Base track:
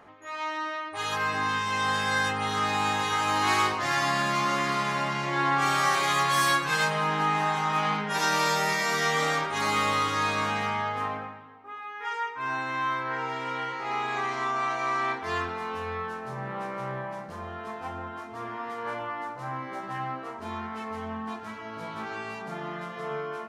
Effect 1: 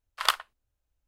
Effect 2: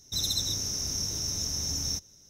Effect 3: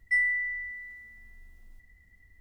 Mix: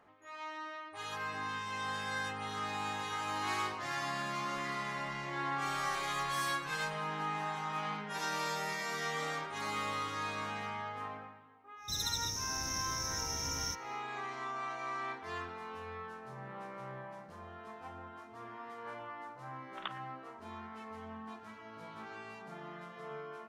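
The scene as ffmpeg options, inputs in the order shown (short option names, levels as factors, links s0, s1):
-filter_complex "[0:a]volume=0.266[s0];[3:a]acompressor=threshold=0.0178:ratio=6:attack=3.2:release=140:knee=1:detection=peak[s1];[1:a]aresample=8000,aresample=44100[s2];[s1]atrim=end=2.4,asetpts=PTS-STARTPTS,volume=0.282,afade=t=in:d=0.004:c=hsin,afade=t=out:st=2.396:d=0.004:c=hsin,adelay=4540[s3];[2:a]atrim=end=2.29,asetpts=PTS-STARTPTS,volume=0.447,afade=t=in:d=0.1,afade=t=out:st=2.19:d=0.1,adelay=11760[s4];[s2]atrim=end=1.07,asetpts=PTS-STARTPTS,volume=0.141,afade=t=in:d=0.004:c=hsin,afade=t=out:st=1.066:d=0.004:c=hsin,adelay=19570[s5];[s0][s3][s4][s5]amix=inputs=4:normalize=0"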